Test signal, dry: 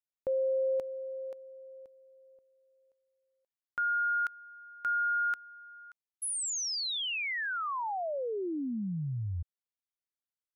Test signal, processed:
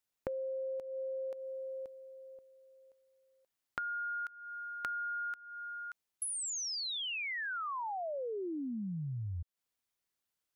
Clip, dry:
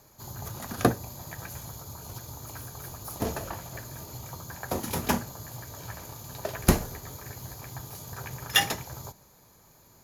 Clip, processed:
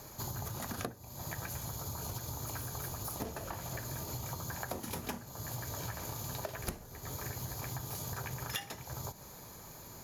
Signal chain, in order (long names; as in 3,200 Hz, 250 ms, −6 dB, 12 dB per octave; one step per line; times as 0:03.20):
downward compressor 16 to 1, threshold −44 dBFS
level +7.5 dB